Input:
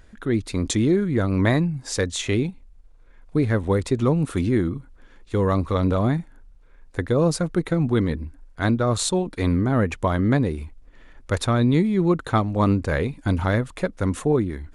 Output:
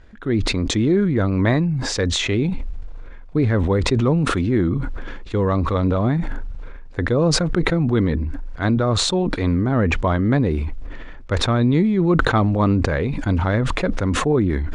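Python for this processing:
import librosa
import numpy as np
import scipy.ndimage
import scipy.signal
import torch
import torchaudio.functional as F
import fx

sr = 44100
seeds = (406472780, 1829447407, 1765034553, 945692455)

y = fx.air_absorb(x, sr, metres=120.0)
y = fx.sustainer(y, sr, db_per_s=24.0)
y = y * 10.0 ** (1.5 / 20.0)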